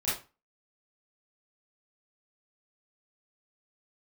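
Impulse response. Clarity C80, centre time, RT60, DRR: 11.5 dB, 45 ms, 0.30 s, −11.0 dB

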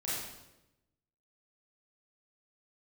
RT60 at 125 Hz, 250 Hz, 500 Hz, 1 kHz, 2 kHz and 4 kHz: 1.3, 1.1, 1.0, 0.85, 0.85, 0.80 seconds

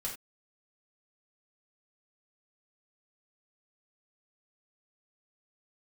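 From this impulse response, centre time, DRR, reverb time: 24 ms, −4.0 dB, non-exponential decay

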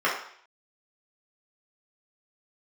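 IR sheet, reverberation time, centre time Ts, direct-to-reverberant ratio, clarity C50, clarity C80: 0.60 s, 36 ms, −7.0 dB, 4.5 dB, 8.5 dB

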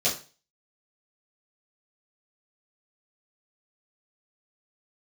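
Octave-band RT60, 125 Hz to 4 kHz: 0.40, 0.35, 0.35, 0.35, 0.35, 0.35 seconds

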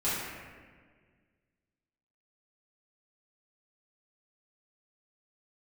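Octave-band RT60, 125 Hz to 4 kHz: 2.2, 2.2, 1.9, 1.5, 1.6, 1.1 seconds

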